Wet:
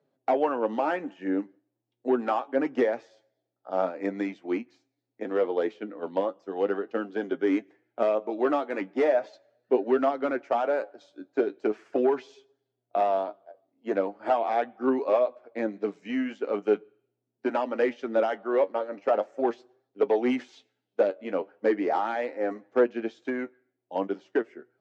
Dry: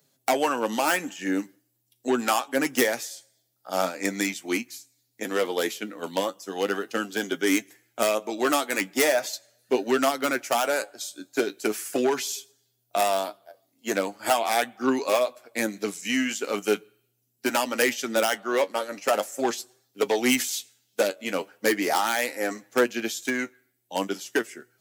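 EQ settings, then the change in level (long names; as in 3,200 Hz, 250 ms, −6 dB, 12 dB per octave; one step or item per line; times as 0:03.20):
resonant band-pass 480 Hz, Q 0.81
high-frequency loss of the air 160 metres
+1.5 dB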